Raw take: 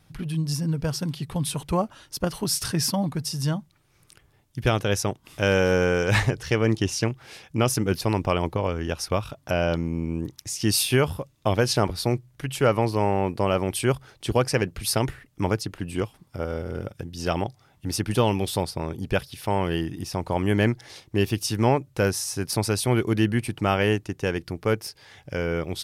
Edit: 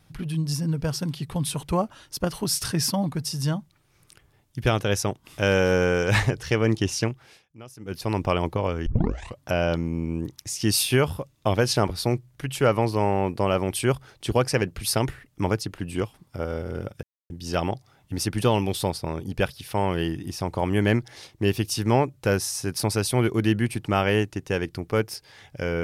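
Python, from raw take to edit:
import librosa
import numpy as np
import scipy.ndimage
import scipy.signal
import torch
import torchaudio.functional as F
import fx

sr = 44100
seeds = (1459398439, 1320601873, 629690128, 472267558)

y = fx.edit(x, sr, fx.fade_down_up(start_s=7.02, length_s=1.2, db=-22.0, fade_s=0.44),
    fx.tape_start(start_s=8.86, length_s=0.55),
    fx.insert_silence(at_s=17.03, length_s=0.27), tone=tone)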